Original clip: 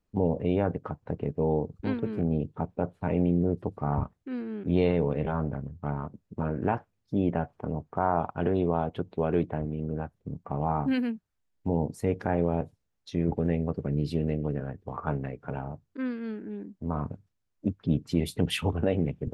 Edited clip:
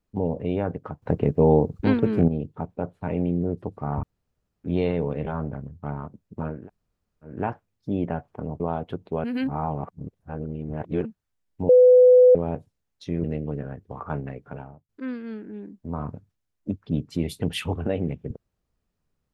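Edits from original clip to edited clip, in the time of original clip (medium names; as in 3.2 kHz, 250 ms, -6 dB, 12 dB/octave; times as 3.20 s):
1.02–2.28 s: gain +9 dB
4.03–4.64 s: room tone
6.58 s: insert room tone 0.75 s, crossfade 0.24 s
7.85–8.66 s: delete
9.30–11.11 s: reverse
11.75–12.41 s: bleep 501 Hz -9.5 dBFS
13.30–14.21 s: delete
15.40–15.86 s: fade out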